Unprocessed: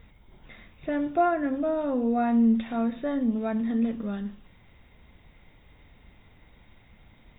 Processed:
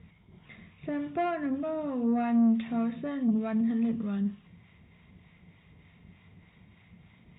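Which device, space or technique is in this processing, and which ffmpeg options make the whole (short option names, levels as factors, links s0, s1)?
guitar amplifier with harmonic tremolo: -filter_complex "[0:a]acrossover=split=690[s0][s1];[s0]aeval=exprs='val(0)*(1-0.5/2+0.5/2*cos(2*PI*3.3*n/s))':c=same[s2];[s1]aeval=exprs='val(0)*(1-0.5/2-0.5/2*cos(2*PI*3.3*n/s))':c=same[s3];[s2][s3]amix=inputs=2:normalize=0,asoftclip=type=tanh:threshold=0.0841,highpass=88,equalizer=f=94:t=q:w=4:g=6,equalizer=f=170:t=q:w=4:g=10,equalizer=f=300:t=q:w=4:g=-4,equalizer=f=550:t=q:w=4:g=-7,equalizer=f=840:t=q:w=4:g=-6,equalizer=f=1500:t=q:w=4:g=-6,lowpass=f=3400:w=0.5412,lowpass=f=3400:w=1.3066,volume=1.26"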